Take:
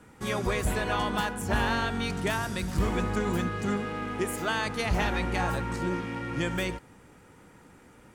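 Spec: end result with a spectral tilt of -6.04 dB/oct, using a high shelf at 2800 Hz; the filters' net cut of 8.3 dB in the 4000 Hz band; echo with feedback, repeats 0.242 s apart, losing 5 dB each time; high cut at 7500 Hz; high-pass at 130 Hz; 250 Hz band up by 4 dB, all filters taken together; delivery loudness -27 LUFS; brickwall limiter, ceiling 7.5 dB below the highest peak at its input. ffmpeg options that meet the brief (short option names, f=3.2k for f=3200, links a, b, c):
-af "highpass=130,lowpass=7.5k,equalizer=f=250:t=o:g=6,highshelf=f=2.8k:g=-7.5,equalizer=f=4k:t=o:g=-5,alimiter=limit=-23dB:level=0:latency=1,aecho=1:1:242|484|726|968|1210|1452|1694:0.562|0.315|0.176|0.0988|0.0553|0.031|0.0173,volume=3.5dB"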